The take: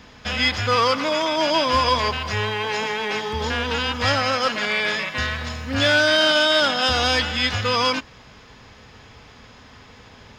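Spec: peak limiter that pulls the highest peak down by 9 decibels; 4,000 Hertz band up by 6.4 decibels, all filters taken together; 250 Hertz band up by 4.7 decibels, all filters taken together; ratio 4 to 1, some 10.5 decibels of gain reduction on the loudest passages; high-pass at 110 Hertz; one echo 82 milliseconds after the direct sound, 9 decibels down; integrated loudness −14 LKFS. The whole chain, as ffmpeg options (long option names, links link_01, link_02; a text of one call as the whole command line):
ffmpeg -i in.wav -af "highpass=110,equalizer=frequency=250:width_type=o:gain=5.5,equalizer=frequency=4000:width_type=o:gain=8.5,acompressor=threshold=-24dB:ratio=4,alimiter=limit=-22dB:level=0:latency=1,aecho=1:1:82:0.355,volume=15dB" out.wav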